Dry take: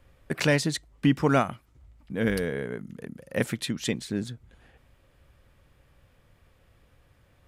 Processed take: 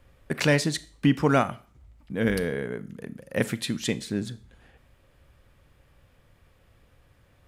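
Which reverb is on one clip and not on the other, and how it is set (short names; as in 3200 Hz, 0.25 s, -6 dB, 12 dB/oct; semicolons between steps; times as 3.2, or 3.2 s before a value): Schroeder reverb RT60 0.43 s, combs from 27 ms, DRR 16 dB; gain +1 dB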